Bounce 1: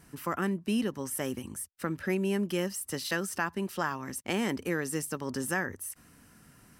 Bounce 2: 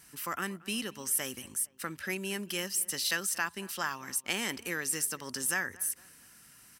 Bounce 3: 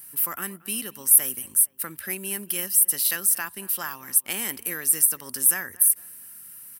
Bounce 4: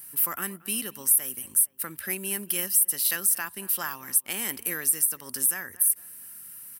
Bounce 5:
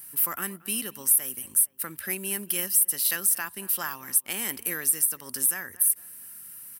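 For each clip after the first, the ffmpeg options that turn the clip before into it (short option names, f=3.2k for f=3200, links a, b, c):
-filter_complex "[0:a]tiltshelf=f=1.3k:g=-8.5,asplit=2[a][b];[b]adelay=229,lowpass=f=2.6k:p=1,volume=-21dB,asplit=2[c][d];[d]adelay=229,lowpass=f=2.6k:p=1,volume=0.45,asplit=2[e][f];[f]adelay=229,lowpass=f=2.6k:p=1,volume=0.45[g];[a][c][e][g]amix=inputs=4:normalize=0,volume=-1.5dB"
-af "aexciter=amount=8.2:drive=4.5:freq=9.2k"
-af "alimiter=limit=-9dB:level=0:latency=1:release=429"
-af "acrusher=bits=8:mode=log:mix=0:aa=0.000001"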